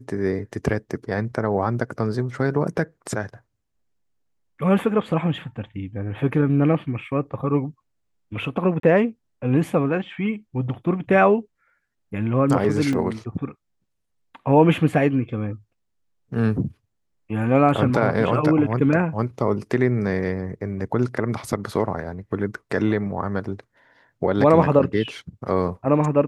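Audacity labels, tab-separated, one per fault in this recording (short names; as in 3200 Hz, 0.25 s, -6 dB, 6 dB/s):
8.800000	8.830000	gap 33 ms
12.930000	12.930000	gap 3.2 ms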